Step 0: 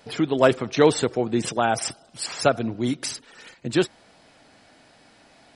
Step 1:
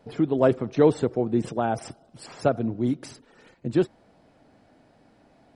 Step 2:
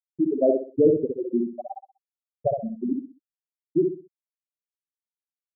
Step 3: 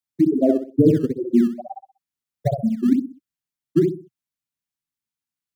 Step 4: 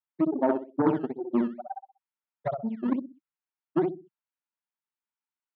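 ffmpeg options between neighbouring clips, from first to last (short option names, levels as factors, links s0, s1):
-af "tiltshelf=f=1200:g=8.5,volume=0.422"
-filter_complex "[0:a]afftfilt=real='re*gte(hypot(re,im),0.562)':imag='im*gte(hypot(re,im),0.562)':win_size=1024:overlap=0.75,asplit=2[s0][s1];[s1]adelay=63,lowpass=f=1900:p=1,volume=0.668,asplit=2[s2][s3];[s3]adelay=63,lowpass=f=1900:p=1,volume=0.32,asplit=2[s4][s5];[s5]adelay=63,lowpass=f=1900:p=1,volume=0.32,asplit=2[s6][s7];[s7]adelay=63,lowpass=f=1900:p=1,volume=0.32[s8];[s0][s2][s4][s6][s8]amix=inputs=5:normalize=0"
-filter_complex "[0:a]equalizer=f=125:t=o:w=1:g=9,equalizer=f=250:t=o:w=1:g=5,equalizer=f=500:t=o:w=1:g=-9,acrossover=split=150|260[s0][s1][s2];[s0]acrusher=samples=17:mix=1:aa=0.000001:lfo=1:lforange=27.2:lforate=2.2[s3];[s3][s1][s2]amix=inputs=3:normalize=0,volume=1.78"
-af "aeval=exprs='0.708*(cos(1*acos(clip(val(0)/0.708,-1,1)))-cos(1*PI/2))+0.0501*(cos(3*acos(clip(val(0)/0.708,-1,1)))-cos(3*PI/2))+0.0398*(cos(6*acos(clip(val(0)/0.708,-1,1)))-cos(6*PI/2))':c=same,highpass=260,equalizer=f=280:t=q:w=4:g=-3,equalizer=f=480:t=q:w=4:g=-7,equalizer=f=920:t=q:w=4:g=9,equalizer=f=1400:t=q:w=4:g=5,lowpass=f=2900:w=0.5412,lowpass=f=2900:w=1.3066,volume=0.708"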